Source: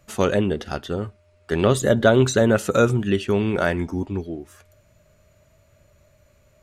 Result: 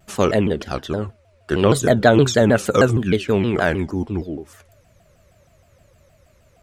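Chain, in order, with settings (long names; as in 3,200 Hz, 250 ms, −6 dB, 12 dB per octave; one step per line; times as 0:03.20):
pitch modulation by a square or saw wave saw down 6.4 Hz, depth 250 cents
level +2.5 dB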